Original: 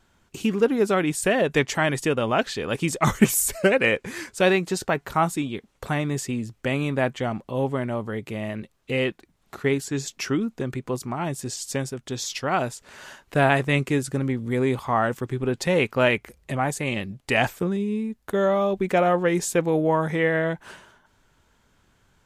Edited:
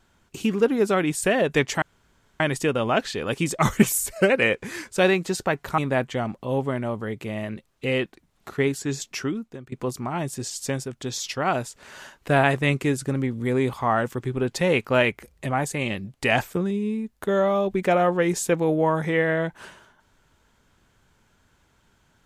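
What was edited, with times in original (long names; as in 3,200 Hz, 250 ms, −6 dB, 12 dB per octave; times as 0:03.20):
0:01.82: splice in room tone 0.58 s
0:03.26–0:03.58: fade out, to −7 dB
0:05.20–0:06.84: remove
0:10.12–0:10.78: fade out, to −19 dB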